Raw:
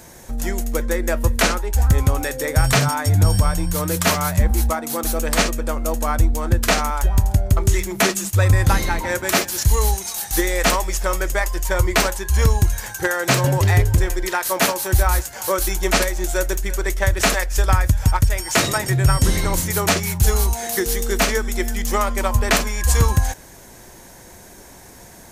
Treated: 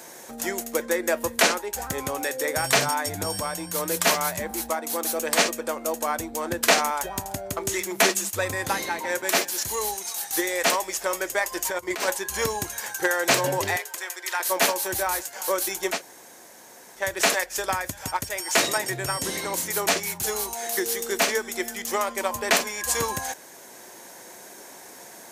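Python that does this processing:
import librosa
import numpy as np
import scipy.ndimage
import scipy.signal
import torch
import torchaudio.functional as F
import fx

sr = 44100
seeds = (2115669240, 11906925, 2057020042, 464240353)

y = fx.over_compress(x, sr, threshold_db=-21.0, ratio=-0.5, at=(11.52, 12.12))
y = fx.highpass(y, sr, hz=890.0, slope=12, at=(13.76, 14.4))
y = fx.edit(y, sr, fx.room_tone_fill(start_s=15.94, length_s=1.06, crossfade_s=0.16), tone=tone)
y = scipy.signal.sosfilt(scipy.signal.butter(2, 330.0, 'highpass', fs=sr, output='sos'), y)
y = fx.dynamic_eq(y, sr, hz=1300.0, q=5.9, threshold_db=-40.0, ratio=4.0, max_db=-5)
y = fx.rider(y, sr, range_db=10, speed_s=2.0)
y = y * librosa.db_to_amplitude(-3.0)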